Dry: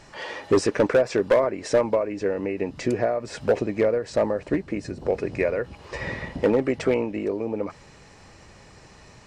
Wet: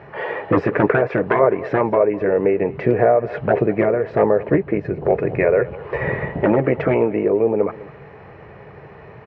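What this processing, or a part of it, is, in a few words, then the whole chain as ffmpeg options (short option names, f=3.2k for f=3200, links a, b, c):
bass cabinet: -af "highpass=75,equalizer=f=140:t=q:w=4:g=6,equalizer=f=260:t=q:w=4:g=-7,equalizer=f=430:t=q:w=4:g=9,equalizer=f=690:t=q:w=4:g=4,lowpass=f=2.2k:w=0.5412,lowpass=f=2.2k:w=1.3066,afftfilt=real='re*lt(hypot(re,im),1.12)':imag='im*lt(hypot(re,im),1.12)':win_size=1024:overlap=0.75,highshelf=f=6.7k:g=6,aecho=1:1:204:0.112,volume=7.5dB"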